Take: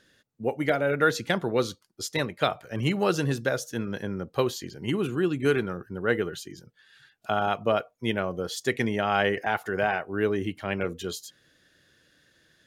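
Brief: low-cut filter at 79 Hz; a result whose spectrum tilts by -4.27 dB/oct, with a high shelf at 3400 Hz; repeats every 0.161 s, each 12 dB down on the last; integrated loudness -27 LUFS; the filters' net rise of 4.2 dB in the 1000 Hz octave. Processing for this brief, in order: HPF 79 Hz; bell 1000 Hz +7 dB; high shelf 3400 Hz -6 dB; feedback echo 0.161 s, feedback 25%, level -12 dB; gain -1 dB

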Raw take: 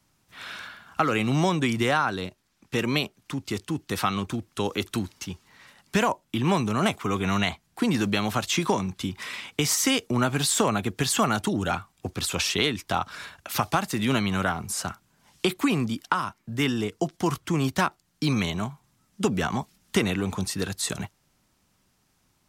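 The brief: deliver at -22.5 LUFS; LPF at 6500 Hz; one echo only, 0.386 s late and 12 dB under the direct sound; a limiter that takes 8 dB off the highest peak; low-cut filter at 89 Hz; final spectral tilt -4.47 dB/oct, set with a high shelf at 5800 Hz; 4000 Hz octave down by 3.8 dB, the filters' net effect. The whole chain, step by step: HPF 89 Hz; LPF 6500 Hz; bell 4000 Hz -7.5 dB; high shelf 5800 Hz +8 dB; limiter -16 dBFS; echo 0.386 s -12 dB; gain +6 dB

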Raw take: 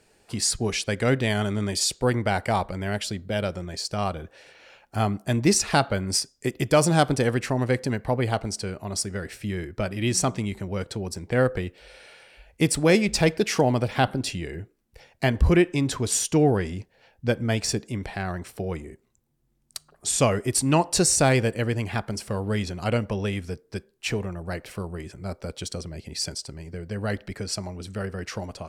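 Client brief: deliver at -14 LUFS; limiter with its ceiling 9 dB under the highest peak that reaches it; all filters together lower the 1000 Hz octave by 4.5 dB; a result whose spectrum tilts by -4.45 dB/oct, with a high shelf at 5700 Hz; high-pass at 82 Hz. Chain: HPF 82 Hz; bell 1000 Hz -6.5 dB; high shelf 5700 Hz -3.5 dB; gain +15.5 dB; limiter -1 dBFS

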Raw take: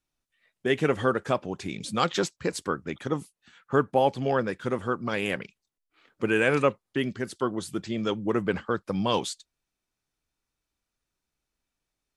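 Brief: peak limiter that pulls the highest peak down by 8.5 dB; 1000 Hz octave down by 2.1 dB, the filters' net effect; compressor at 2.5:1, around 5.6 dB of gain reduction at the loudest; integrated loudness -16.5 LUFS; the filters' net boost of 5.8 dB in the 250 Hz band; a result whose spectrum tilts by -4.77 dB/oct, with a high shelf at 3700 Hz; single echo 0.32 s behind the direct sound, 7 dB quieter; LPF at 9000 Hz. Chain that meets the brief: LPF 9000 Hz; bell 250 Hz +7.5 dB; bell 1000 Hz -4 dB; high shelf 3700 Hz +8 dB; compressor 2.5:1, threshold -24 dBFS; limiter -21 dBFS; echo 0.32 s -7 dB; gain +16 dB

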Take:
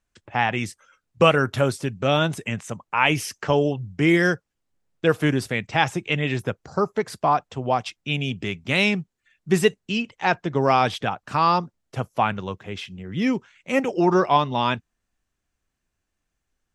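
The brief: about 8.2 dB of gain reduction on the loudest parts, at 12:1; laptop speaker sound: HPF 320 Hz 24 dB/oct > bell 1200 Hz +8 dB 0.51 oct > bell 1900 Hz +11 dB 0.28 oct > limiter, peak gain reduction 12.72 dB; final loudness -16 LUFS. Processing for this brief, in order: compressor 12:1, threshold -19 dBFS; HPF 320 Hz 24 dB/oct; bell 1200 Hz +8 dB 0.51 oct; bell 1900 Hz +11 dB 0.28 oct; gain +13.5 dB; limiter -4 dBFS

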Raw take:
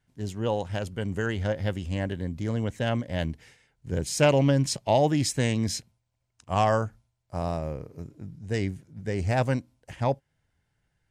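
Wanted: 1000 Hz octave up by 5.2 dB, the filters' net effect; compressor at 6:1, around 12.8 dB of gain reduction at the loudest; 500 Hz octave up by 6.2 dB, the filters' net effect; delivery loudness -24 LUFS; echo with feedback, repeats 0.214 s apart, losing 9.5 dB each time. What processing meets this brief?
bell 500 Hz +6 dB; bell 1000 Hz +4.5 dB; compressor 6:1, threshold -25 dBFS; feedback echo 0.214 s, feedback 33%, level -9.5 dB; gain +7 dB

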